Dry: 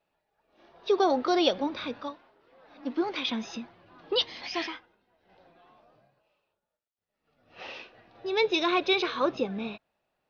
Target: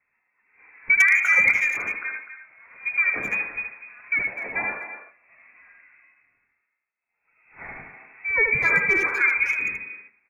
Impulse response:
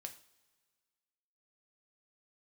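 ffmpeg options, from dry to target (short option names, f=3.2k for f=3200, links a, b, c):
-filter_complex "[0:a]lowpass=f=2.3k:t=q:w=0.5098,lowpass=f=2.3k:t=q:w=0.6013,lowpass=f=2.3k:t=q:w=0.9,lowpass=f=2.3k:t=q:w=2.563,afreqshift=-2700,asplit=2[a][b];[1:a]atrim=start_sample=2205,asetrate=52920,aresample=44100,adelay=76[c];[b][c]afir=irnorm=-1:irlink=0,volume=1.5dB[d];[a][d]amix=inputs=2:normalize=0,aeval=exprs='0.211*(abs(mod(val(0)/0.211+3,4)-2)-1)':c=same,asplit=2[e][f];[f]adelay=250,highpass=300,lowpass=3.4k,asoftclip=type=hard:threshold=-22.5dB,volume=-10dB[g];[e][g]amix=inputs=2:normalize=0,volume=5dB"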